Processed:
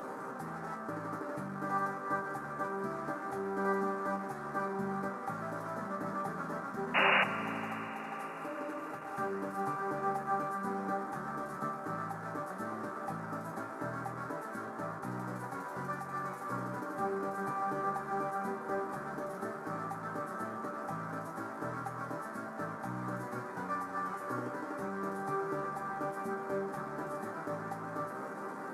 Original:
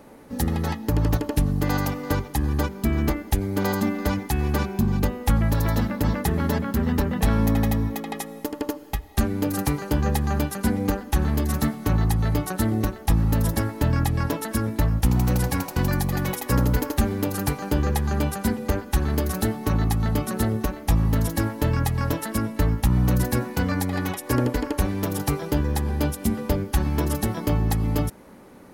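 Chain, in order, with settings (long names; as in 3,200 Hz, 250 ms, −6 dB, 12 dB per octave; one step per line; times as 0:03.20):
linear delta modulator 64 kbit/s, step −23 dBFS
Bessel high-pass filter 210 Hz, order 4
high shelf with overshoot 2,000 Hz −13.5 dB, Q 3
upward compression, threshold −36 dBFS
resonators tuned to a chord C3 minor, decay 0.23 s
sound drawn into the spectrogram noise, 0:06.94–0:07.24, 510–2,900 Hz −27 dBFS
on a send: convolution reverb RT60 5.7 s, pre-delay 59 ms, DRR 10 dB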